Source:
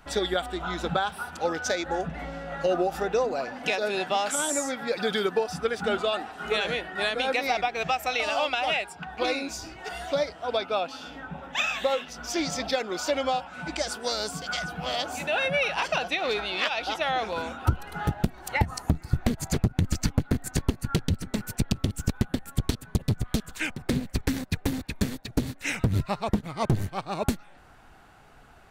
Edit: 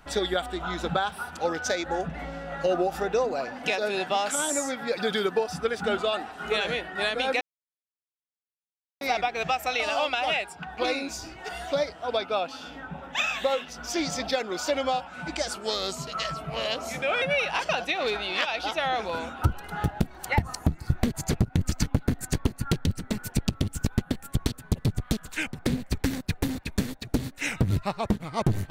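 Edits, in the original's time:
7.41 s: insert silence 1.60 s
13.94–15.45 s: speed 90%

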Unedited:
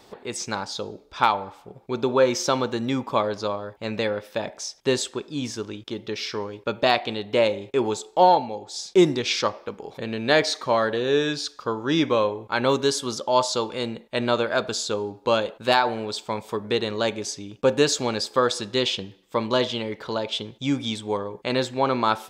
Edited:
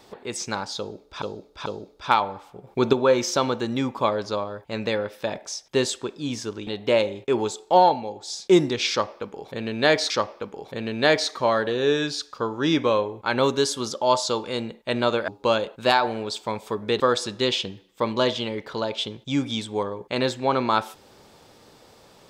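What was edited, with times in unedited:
0.78–1.22 s: loop, 3 plays
1.79–2.05 s: gain +6.5 dB
5.79–7.13 s: delete
9.36–10.56 s: loop, 2 plays
14.54–15.10 s: delete
16.82–18.34 s: delete

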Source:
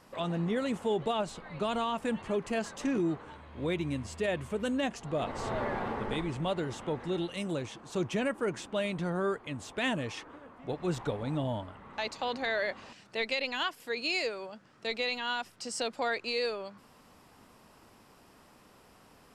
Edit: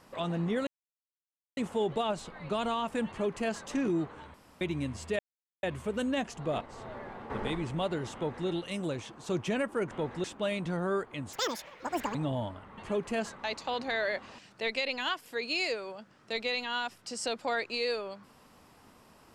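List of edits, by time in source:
0.67 s: insert silence 0.90 s
2.17–2.75 s: copy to 11.90 s
3.44–3.71 s: room tone
4.29 s: insert silence 0.44 s
5.27–5.96 s: gain -10 dB
6.80–7.13 s: copy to 8.57 s
9.66–11.27 s: speed 197%

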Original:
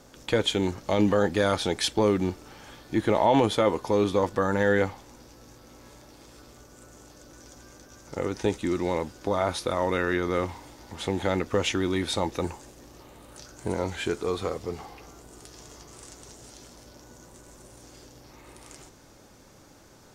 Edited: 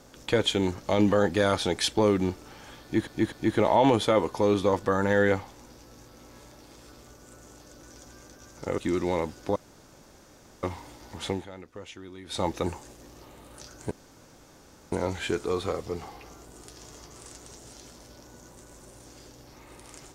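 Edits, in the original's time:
2.82–3.07 s: loop, 3 plays
8.28–8.56 s: delete
9.34–10.41 s: room tone
11.06–12.22 s: dip -17.5 dB, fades 0.19 s
13.69 s: insert room tone 1.01 s

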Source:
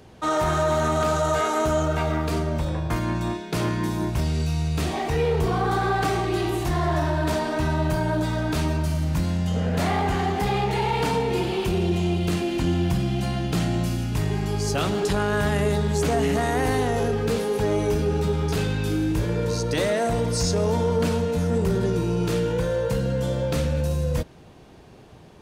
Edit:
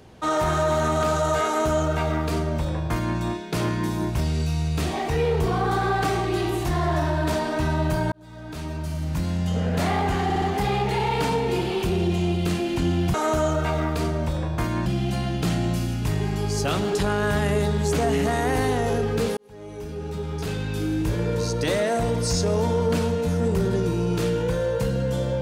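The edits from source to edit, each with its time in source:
1.46–3.18 s: copy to 12.96 s
8.12–9.48 s: fade in
10.24 s: stutter 0.06 s, 4 plays
17.47–19.29 s: fade in

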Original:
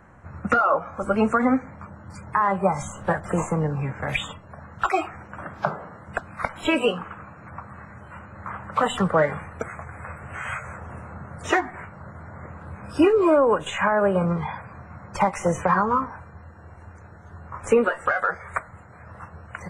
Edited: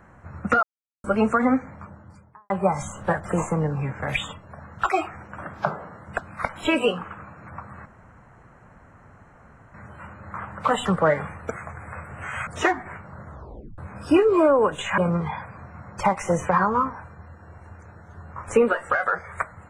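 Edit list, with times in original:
0.63–1.04 s: mute
1.71–2.50 s: studio fade out
7.86 s: insert room tone 1.88 s
10.59–11.35 s: delete
12.16 s: tape stop 0.50 s
13.86–14.14 s: delete

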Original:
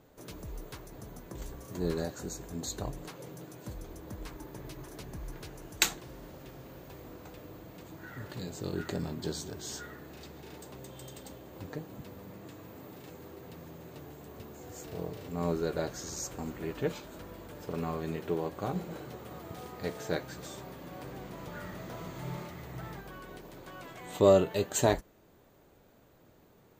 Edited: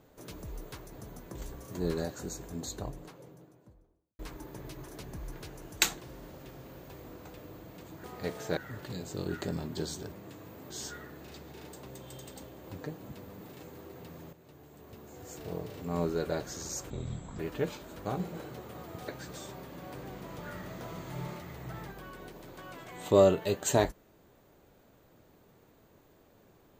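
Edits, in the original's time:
2.33–4.19 s: studio fade out
12.30–12.88 s: move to 9.59 s
13.80–14.90 s: fade in, from -12 dB
16.37–16.62 s: speed 51%
17.28–18.61 s: delete
19.64–20.17 s: move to 8.04 s

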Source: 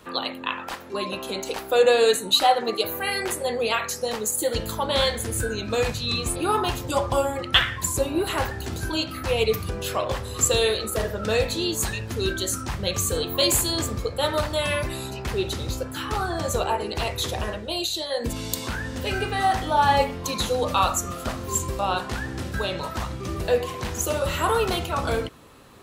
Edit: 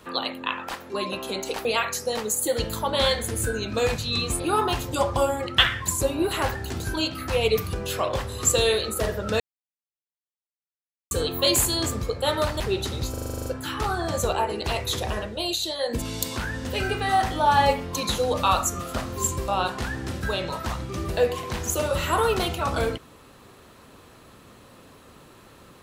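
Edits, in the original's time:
1.65–3.61 s: delete
11.36–13.07 s: mute
14.56–15.27 s: delete
15.77 s: stutter 0.04 s, 10 plays

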